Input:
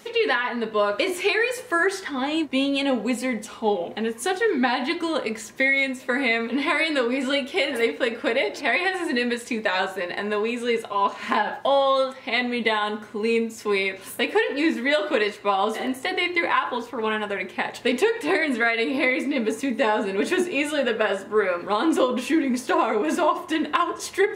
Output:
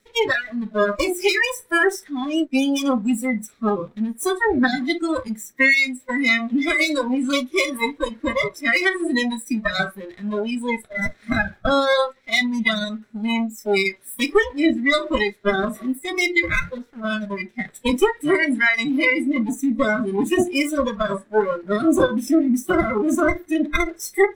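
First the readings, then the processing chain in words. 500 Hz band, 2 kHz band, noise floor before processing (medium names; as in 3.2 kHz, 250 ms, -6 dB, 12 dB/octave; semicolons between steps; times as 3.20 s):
+0.5 dB, +3.5 dB, -41 dBFS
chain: comb filter that takes the minimum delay 0.53 ms; spectral noise reduction 22 dB; trim +5.5 dB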